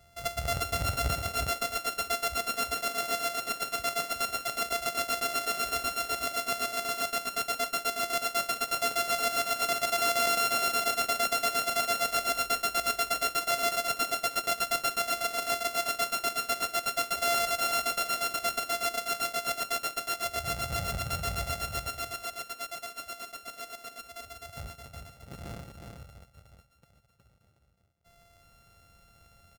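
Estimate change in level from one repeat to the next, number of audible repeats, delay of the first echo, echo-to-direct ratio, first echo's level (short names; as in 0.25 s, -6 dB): no steady repeat, 1, 0.365 s, -5.0 dB, -5.0 dB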